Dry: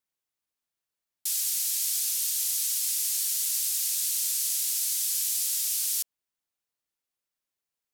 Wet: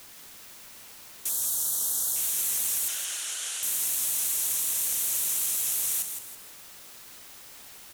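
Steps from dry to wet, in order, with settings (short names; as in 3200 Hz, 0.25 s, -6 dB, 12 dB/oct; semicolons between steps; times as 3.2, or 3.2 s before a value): bell 4800 Hz -14 dB 0.34 oct; companded quantiser 4-bit; vibrato 5.4 Hz 64 cents; requantised 8-bit, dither triangular; 1.29–2.16 Butterworth band-stop 2300 Hz, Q 1.2; 2.88–3.63 speaker cabinet 470–8900 Hz, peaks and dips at 950 Hz -3 dB, 1500 Hz +8 dB, 3000 Hz +7 dB, 7900 Hz -4 dB; on a send: frequency-shifting echo 0.163 s, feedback 36%, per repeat +66 Hz, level -7.5 dB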